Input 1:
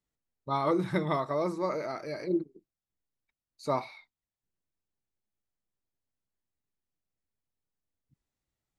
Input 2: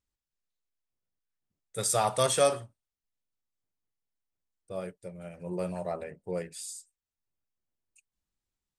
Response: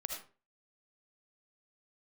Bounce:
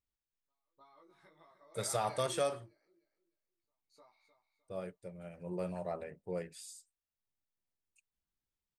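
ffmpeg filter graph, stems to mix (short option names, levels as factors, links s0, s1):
-filter_complex "[0:a]highpass=f=890:p=1,acompressor=threshold=0.0126:ratio=12,flanger=delay=17:depth=2.7:speed=1.6,volume=0.794,asplit=2[s0][s1];[s1]volume=0.15[s2];[1:a]equalizer=f=8500:t=o:w=1.4:g=-5.5,volume=0.562,asplit=2[s3][s4];[s4]apad=whole_len=387414[s5];[s0][s5]sidechaingate=range=0.00447:threshold=0.00178:ratio=16:detection=peak[s6];[s2]aecho=0:1:305|610|915|1220:1|0.28|0.0784|0.022[s7];[s6][s3][s7]amix=inputs=3:normalize=0,alimiter=limit=0.075:level=0:latency=1:release=485"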